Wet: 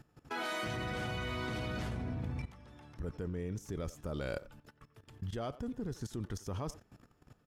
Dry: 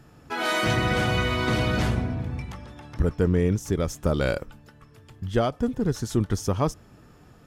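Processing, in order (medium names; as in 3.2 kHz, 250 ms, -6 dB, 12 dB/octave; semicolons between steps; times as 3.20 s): level held to a coarse grid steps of 17 dB; speakerphone echo 90 ms, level -16 dB; trim -3.5 dB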